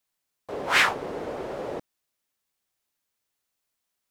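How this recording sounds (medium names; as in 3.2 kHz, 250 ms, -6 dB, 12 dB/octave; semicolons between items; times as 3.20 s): noise floor -82 dBFS; spectral tilt -2.0 dB/octave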